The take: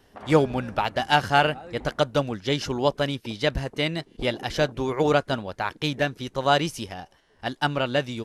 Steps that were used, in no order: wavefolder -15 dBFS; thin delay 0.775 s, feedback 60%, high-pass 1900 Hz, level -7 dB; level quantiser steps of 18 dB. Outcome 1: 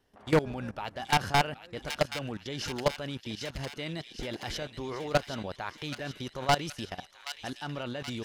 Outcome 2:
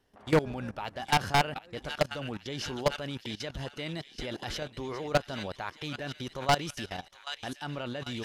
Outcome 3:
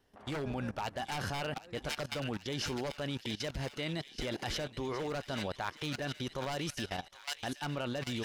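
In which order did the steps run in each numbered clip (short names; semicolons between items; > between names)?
level quantiser > wavefolder > thin delay; thin delay > level quantiser > wavefolder; wavefolder > thin delay > level quantiser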